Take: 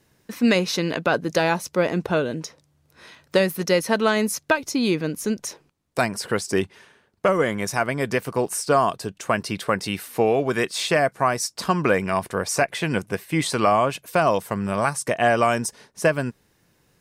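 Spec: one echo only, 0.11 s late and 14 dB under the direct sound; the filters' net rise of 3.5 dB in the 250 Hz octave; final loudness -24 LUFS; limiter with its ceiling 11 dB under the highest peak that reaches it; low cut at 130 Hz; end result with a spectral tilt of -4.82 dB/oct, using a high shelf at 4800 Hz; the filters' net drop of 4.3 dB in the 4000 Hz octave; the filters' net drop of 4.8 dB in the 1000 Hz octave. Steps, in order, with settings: HPF 130 Hz; bell 250 Hz +5.5 dB; bell 1000 Hz -7 dB; bell 4000 Hz -3.5 dB; high shelf 4800 Hz -3.5 dB; limiter -17 dBFS; echo 0.11 s -14 dB; gain +4 dB

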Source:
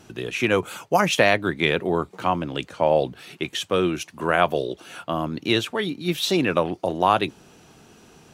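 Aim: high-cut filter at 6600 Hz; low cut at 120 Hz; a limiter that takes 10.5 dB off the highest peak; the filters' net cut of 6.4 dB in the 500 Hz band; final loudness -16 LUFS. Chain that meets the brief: HPF 120 Hz; LPF 6600 Hz; bell 500 Hz -8.5 dB; gain +12 dB; limiter -1.5 dBFS

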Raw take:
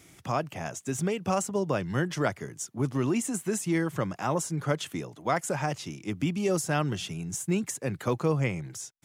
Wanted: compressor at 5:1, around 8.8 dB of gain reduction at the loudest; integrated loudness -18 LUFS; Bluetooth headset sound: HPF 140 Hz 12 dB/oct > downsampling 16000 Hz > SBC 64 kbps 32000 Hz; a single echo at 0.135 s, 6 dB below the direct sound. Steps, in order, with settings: compressor 5:1, threshold -32 dBFS; HPF 140 Hz 12 dB/oct; echo 0.135 s -6 dB; downsampling 16000 Hz; gain +18.5 dB; SBC 64 kbps 32000 Hz

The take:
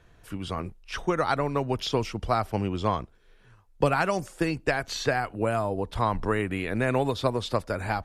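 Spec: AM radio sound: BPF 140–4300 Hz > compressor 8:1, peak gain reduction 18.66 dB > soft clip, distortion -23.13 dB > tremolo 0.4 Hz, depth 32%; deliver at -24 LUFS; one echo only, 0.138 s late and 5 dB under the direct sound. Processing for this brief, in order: BPF 140–4300 Hz; echo 0.138 s -5 dB; compressor 8:1, threshold -37 dBFS; soft clip -27.5 dBFS; tremolo 0.4 Hz, depth 32%; gain +19 dB

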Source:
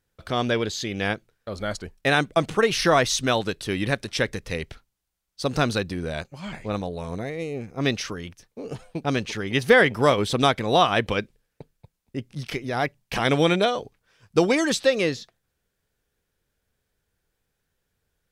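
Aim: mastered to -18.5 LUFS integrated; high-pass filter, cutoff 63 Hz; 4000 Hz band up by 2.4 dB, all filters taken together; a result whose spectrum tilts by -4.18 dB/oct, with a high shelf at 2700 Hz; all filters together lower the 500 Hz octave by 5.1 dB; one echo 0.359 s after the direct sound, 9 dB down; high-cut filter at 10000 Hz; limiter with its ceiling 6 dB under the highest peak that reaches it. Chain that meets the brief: HPF 63 Hz; LPF 10000 Hz; bell 500 Hz -6 dB; high shelf 2700 Hz -4.5 dB; bell 4000 Hz +6.5 dB; limiter -11 dBFS; echo 0.359 s -9 dB; gain +7.5 dB

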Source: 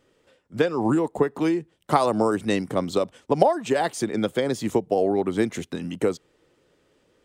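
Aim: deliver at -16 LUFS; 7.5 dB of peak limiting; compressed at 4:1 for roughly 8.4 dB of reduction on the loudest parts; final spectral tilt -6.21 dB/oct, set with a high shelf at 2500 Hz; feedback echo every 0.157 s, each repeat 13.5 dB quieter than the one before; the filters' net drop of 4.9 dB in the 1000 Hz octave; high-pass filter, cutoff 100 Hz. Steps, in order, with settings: HPF 100 Hz; bell 1000 Hz -6 dB; high shelf 2500 Hz -6.5 dB; compressor 4:1, threshold -24 dBFS; limiter -20.5 dBFS; feedback echo 0.157 s, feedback 21%, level -13.5 dB; gain +15.5 dB

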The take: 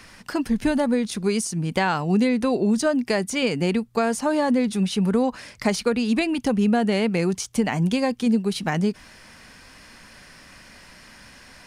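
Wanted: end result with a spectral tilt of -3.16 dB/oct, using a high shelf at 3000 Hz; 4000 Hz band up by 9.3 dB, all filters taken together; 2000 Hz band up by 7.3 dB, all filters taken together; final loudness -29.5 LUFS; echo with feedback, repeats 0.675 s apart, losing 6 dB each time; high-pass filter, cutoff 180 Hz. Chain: HPF 180 Hz; bell 2000 Hz +5 dB; high shelf 3000 Hz +7.5 dB; bell 4000 Hz +4.5 dB; feedback echo 0.675 s, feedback 50%, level -6 dB; gain -9.5 dB

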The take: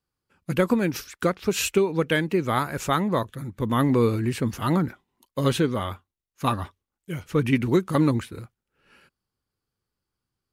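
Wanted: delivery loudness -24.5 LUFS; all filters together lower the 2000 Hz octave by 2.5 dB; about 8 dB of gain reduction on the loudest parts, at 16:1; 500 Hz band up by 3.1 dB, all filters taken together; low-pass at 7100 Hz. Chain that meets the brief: LPF 7100 Hz; bell 500 Hz +4 dB; bell 2000 Hz -3.5 dB; compressor 16:1, threshold -21 dBFS; gain +4 dB

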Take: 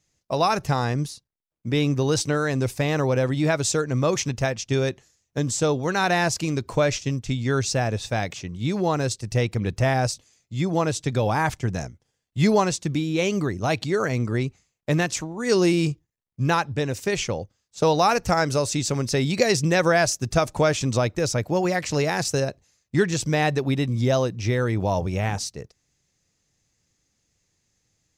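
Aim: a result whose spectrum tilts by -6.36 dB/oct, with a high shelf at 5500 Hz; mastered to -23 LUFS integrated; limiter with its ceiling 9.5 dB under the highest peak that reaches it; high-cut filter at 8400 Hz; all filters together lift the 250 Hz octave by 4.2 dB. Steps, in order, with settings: LPF 8400 Hz; bell 250 Hz +6 dB; high shelf 5500 Hz -8.5 dB; gain +1.5 dB; limiter -11.5 dBFS

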